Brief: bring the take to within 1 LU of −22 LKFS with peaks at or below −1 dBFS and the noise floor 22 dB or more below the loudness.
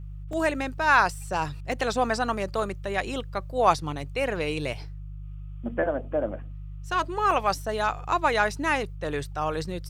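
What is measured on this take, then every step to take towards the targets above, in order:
number of dropouts 3; longest dropout 2.7 ms; mains hum 50 Hz; hum harmonics up to 150 Hz; level of the hum −35 dBFS; integrated loudness −26.5 LKFS; sample peak −6.5 dBFS; target loudness −22.0 LKFS
→ repair the gap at 0:00.33/0:01.72/0:07.31, 2.7 ms
hum removal 50 Hz, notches 3
level +4.5 dB

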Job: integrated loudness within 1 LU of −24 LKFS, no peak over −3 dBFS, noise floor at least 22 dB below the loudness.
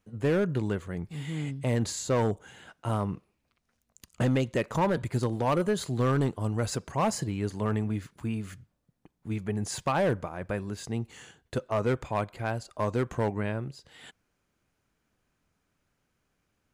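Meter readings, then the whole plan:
share of clipped samples 1.4%; peaks flattened at −20.0 dBFS; integrated loudness −30.0 LKFS; sample peak −20.0 dBFS; target loudness −24.0 LKFS
→ clipped peaks rebuilt −20 dBFS
level +6 dB

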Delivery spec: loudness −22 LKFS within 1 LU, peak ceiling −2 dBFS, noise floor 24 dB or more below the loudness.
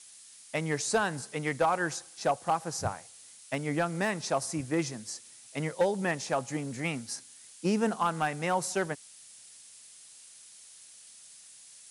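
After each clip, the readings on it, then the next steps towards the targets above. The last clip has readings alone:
share of clipped samples 0.3%; peaks flattened at −19.0 dBFS; background noise floor −53 dBFS; target noise floor −56 dBFS; integrated loudness −31.5 LKFS; sample peak −19.0 dBFS; target loudness −22.0 LKFS
→ clipped peaks rebuilt −19 dBFS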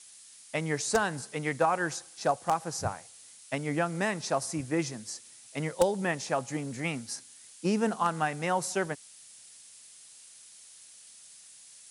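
share of clipped samples 0.0%; background noise floor −53 dBFS; target noise floor −55 dBFS
→ noise reduction from a noise print 6 dB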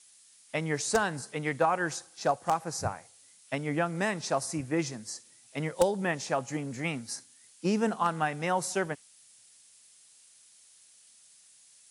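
background noise floor −59 dBFS; integrated loudness −31.0 LKFS; sample peak −10.0 dBFS; target loudness −22.0 LKFS
→ level +9 dB
brickwall limiter −2 dBFS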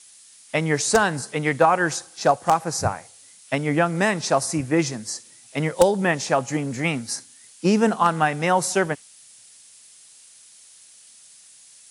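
integrated loudness −22.0 LKFS; sample peak −2.0 dBFS; background noise floor −50 dBFS

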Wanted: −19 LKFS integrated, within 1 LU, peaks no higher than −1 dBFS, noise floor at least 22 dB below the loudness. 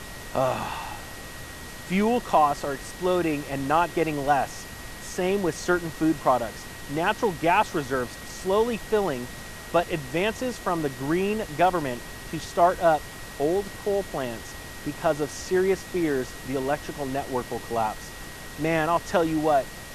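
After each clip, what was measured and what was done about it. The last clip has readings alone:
interfering tone 1,900 Hz; level of the tone −45 dBFS; background noise floor −40 dBFS; target noise floor −48 dBFS; integrated loudness −26.0 LKFS; sample peak −8.5 dBFS; target loudness −19.0 LKFS
→ notch filter 1,900 Hz, Q 30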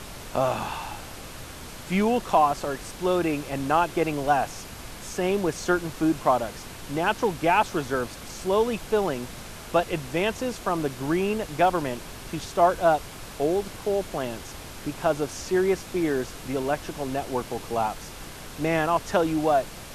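interfering tone none found; background noise floor −41 dBFS; target noise floor −48 dBFS
→ noise reduction from a noise print 7 dB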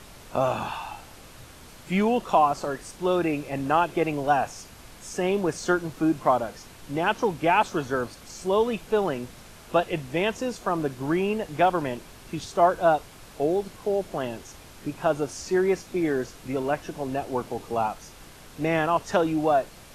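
background noise floor −47 dBFS; target noise floor −48 dBFS
→ noise reduction from a noise print 6 dB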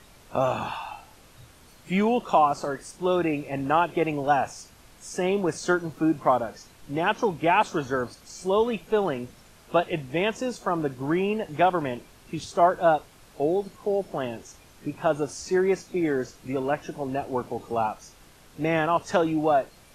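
background noise floor −53 dBFS; integrated loudness −26.0 LKFS; sample peak −8.5 dBFS; target loudness −19.0 LKFS
→ level +7 dB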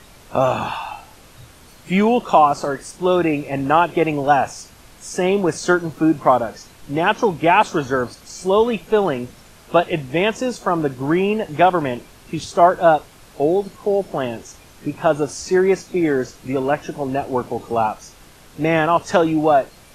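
integrated loudness −19.0 LKFS; sample peak −1.5 dBFS; background noise floor −46 dBFS

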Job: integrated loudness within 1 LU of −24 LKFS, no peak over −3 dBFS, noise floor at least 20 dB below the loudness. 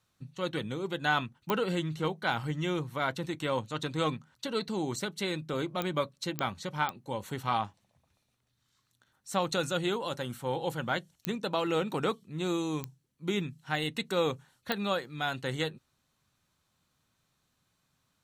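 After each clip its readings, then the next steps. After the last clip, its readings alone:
number of clicks 7; integrated loudness −33.0 LKFS; sample peak −13.5 dBFS; target loudness −24.0 LKFS
→ click removal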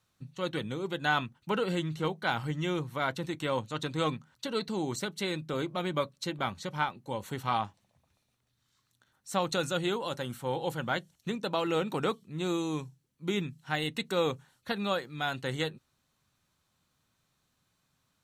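number of clicks 0; integrated loudness −33.0 LKFS; sample peak −13.5 dBFS; target loudness −24.0 LKFS
→ level +9 dB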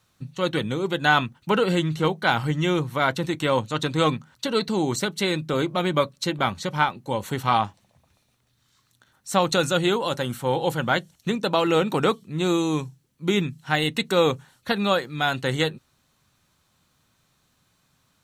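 integrated loudness −24.0 LKFS; sample peak −4.5 dBFS; background noise floor −68 dBFS

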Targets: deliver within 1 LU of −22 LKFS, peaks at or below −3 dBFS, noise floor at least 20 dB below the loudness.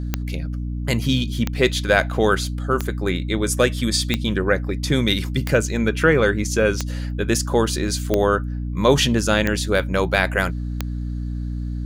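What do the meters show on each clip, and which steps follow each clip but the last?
number of clicks 9; mains hum 60 Hz; hum harmonics up to 300 Hz; level of the hum −23 dBFS; integrated loudness −21.0 LKFS; sample peak −2.0 dBFS; target loudness −22.0 LKFS
→ click removal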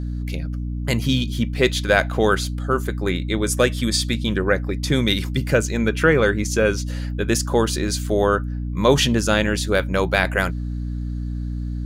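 number of clicks 0; mains hum 60 Hz; hum harmonics up to 300 Hz; level of the hum −23 dBFS
→ hum removal 60 Hz, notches 5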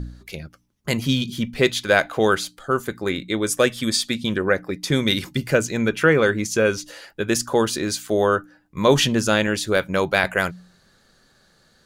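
mains hum none found; integrated loudness −21.0 LKFS; sample peak −3.0 dBFS; target loudness −22.0 LKFS
→ level −1 dB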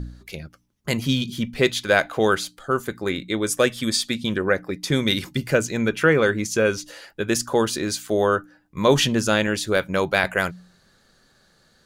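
integrated loudness −22.0 LKFS; sample peak −4.0 dBFS; background noise floor −60 dBFS

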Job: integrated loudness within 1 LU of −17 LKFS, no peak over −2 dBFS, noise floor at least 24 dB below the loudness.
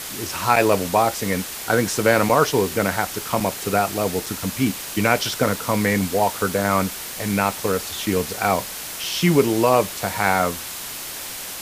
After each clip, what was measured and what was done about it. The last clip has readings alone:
number of dropouts 7; longest dropout 3.4 ms; background noise floor −33 dBFS; target noise floor −45 dBFS; integrated loudness −21.0 LKFS; sample peak −1.5 dBFS; target loudness −17.0 LKFS
→ repair the gap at 0:00.56/0:02.29/0:03.40/0:04.26/0:06.19/0:07.19/0:07.72, 3.4 ms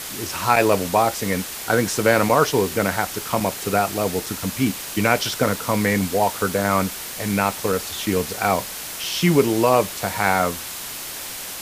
number of dropouts 0; background noise floor −33 dBFS; target noise floor −45 dBFS
→ broadband denoise 12 dB, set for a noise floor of −33 dBFS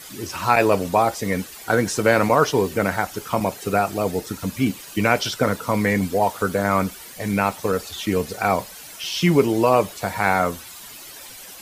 background noise floor −40 dBFS; target noise floor −46 dBFS
→ broadband denoise 6 dB, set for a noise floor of −40 dBFS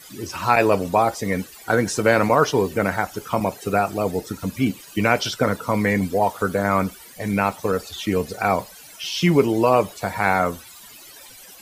background noise floor −44 dBFS; target noise floor −46 dBFS
→ broadband denoise 6 dB, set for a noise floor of −44 dBFS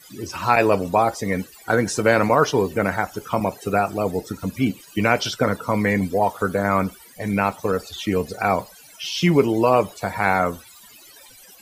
background noise floor −47 dBFS; integrated loudness −21.5 LKFS; sample peak −2.0 dBFS; target loudness −17.0 LKFS
→ level +4.5 dB
brickwall limiter −2 dBFS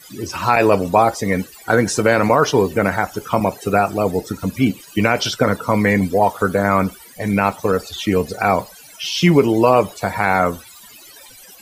integrated loudness −17.5 LKFS; sample peak −2.0 dBFS; background noise floor −43 dBFS

